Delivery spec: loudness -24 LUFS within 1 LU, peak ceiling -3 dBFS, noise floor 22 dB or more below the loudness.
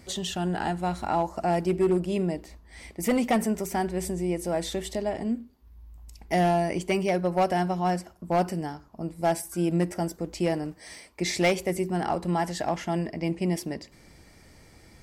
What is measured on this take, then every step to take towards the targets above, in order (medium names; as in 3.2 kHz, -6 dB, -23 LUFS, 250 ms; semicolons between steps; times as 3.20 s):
clipped samples 0.6%; clipping level -17.0 dBFS; loudness -28.0 LUFS; peak level -17.0 dBFS; loudness target -24.0 LUFS
-> clip repair -17 dBFS; trim +4 dB